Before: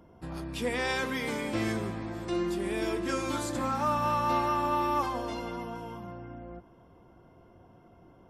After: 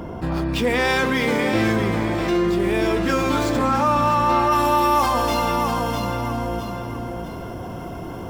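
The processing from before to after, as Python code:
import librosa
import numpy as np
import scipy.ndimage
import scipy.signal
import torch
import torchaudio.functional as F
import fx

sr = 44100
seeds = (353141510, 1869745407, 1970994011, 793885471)

y = scipy.ndimage.median_filter(x, 5, mode='constant')
y = fx.high_shelf(y, sr, hz=4500.0, db=fx.steps((0.0, -2.5), (4.51, 11.5)))
y = fx.echo_feedback(y, sr, ms=652, feedback_pct=23, wet_db=-9)
y = fx.env_flatten(y, sr, amount_pct=50)
y = F.gain(torch.from_numpy(y), 8.0).numpy()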